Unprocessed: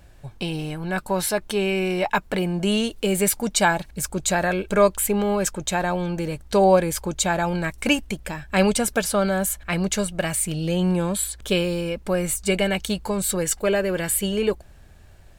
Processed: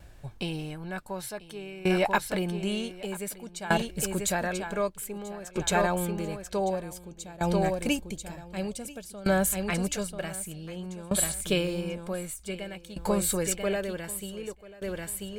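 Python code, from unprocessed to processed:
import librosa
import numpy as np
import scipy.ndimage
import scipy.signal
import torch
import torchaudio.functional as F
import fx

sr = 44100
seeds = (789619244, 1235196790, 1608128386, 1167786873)

y = fx.peak_eq(x, sr, hz=1400.0, db=-9.0, octaves=1.8, at=(6.7, 9.24))
y = fx.echo_feedback(y, sr, ms=989, feedback_pct=16, wet_db=-9.0)
y = fx.tremolo_decay(y, sr, direction='decaying', hz=0.54, depth_db=20)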